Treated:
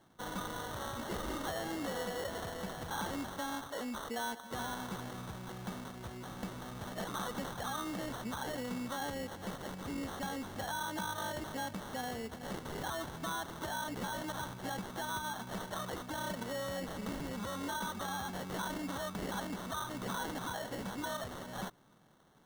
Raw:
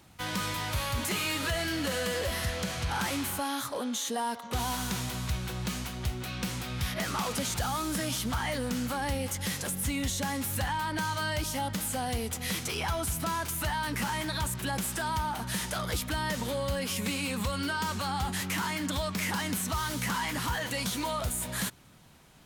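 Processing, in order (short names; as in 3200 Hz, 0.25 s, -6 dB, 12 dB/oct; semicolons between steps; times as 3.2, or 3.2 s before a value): HPF 160 Hz 12 dB/oct; high shelf 8700 Hz -11.5 dB; sample-and-hold 18×; gain -6 dB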